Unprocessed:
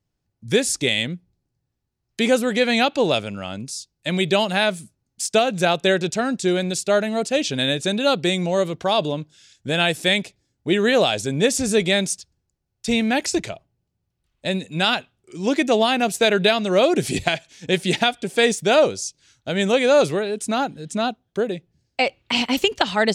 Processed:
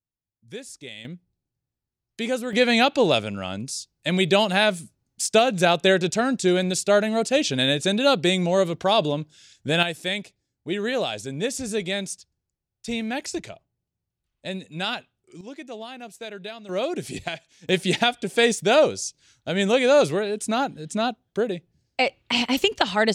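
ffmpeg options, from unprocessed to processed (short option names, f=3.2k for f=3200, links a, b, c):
-af "asetnsamples=n=441:p=0,asendcmd='1.05 volume volume -8dB;2.53 volume volume 0dB;9.83 volume volume -8dB;15.41 volume volume -19dB;16.69 volume volume -9.5dB;17.69 volume volume -1.5dB',volume=-18.5dB"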